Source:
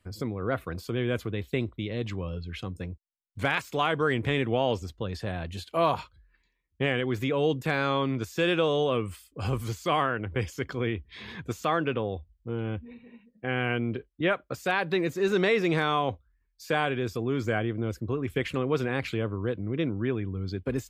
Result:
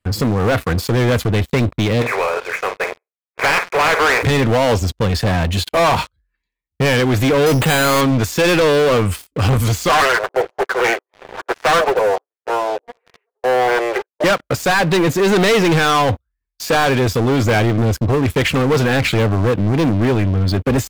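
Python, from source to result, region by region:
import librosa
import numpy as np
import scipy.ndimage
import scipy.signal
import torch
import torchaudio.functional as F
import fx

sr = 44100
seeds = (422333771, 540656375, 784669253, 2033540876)

y = fx.spec_flatten(x, sr, power=0.47, at=(2.01, 4.22), fade=0.02)
y = fx.brickwall_bandpass(y, sr, low_hz=360.0, high_hz=2600.0, at=(2.01, 4.22), fade=0.02)
y = fx.room_flutter(y, sr, wall_m=8.7, rt60_s=0.23, at=(2.01, 4.22), fade=0.02)
y = fx.chain(y, sr, fx.resample_bad(factor=8, down='none', up='hold'),
    fx.sustainer(db_per_s=97.0), at=(7.46, 8.01))
y = fx.chain(y, sr, fx.lower_of_two(delay_ms=7.8),
    fx.filter_lfo_lowpass(shape='sine', hz=1.3, low_hz=650.0, high_hz=2000.0, q=1.9),
    fx.steep_highpass(hz=360.0, slope=72), at=(9.89, 14.24))
y = fx.peak_eq(y, sr, hz=370.0, db=-4.0, octaves=0.26)
y = fx.leveller(y, sr, passes=5)
y = F.gain(torch.from_numpy(y), 2.0).numpy()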